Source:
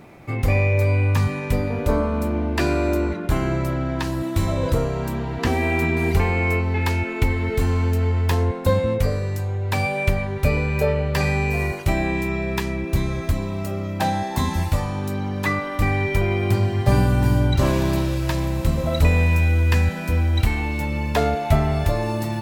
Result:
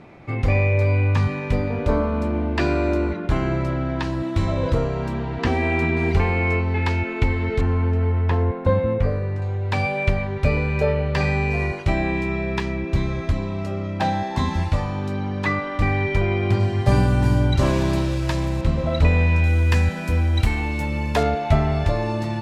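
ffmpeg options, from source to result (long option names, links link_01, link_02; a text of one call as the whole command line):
ffmpeg -i in.wav -af "asetnsamples=nb_out_samples=441:pad=0,asendcmd='7.61 lowpass f 2100;9.42 lowpass f 4700;16.6 lowpass f 8400;18.61 lowpass f 4300;19.44 lowpass f 10000;21.23 lowpass f 5400',lowpass=4600" out.wav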